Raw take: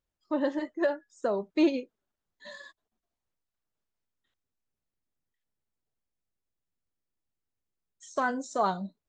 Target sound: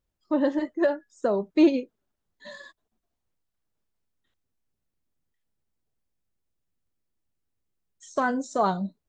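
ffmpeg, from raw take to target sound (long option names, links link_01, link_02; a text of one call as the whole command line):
ffmpeg -i in.wav -af "lowshelf=frequency=460:gain=6,volume=1.5dB" out.wav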